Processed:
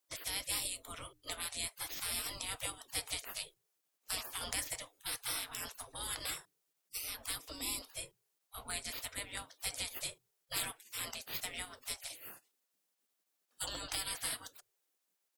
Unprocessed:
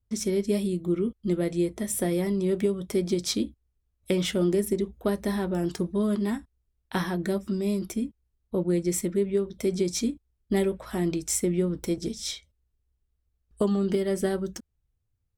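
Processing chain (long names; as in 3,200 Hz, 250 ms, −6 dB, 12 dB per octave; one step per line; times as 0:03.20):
high-shelf EQ 4,300 Hz +8 dB
mains-hum notches 60/120/180/240/300 Hz
gate on every frequency bin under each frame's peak −30 dB weak
0:07.39–0:07.87: graphic EQ with 15 bands 100 Hz −4 dB, 250 Hz +12 dB, 1,600 Hz −8 dB
level +5 dB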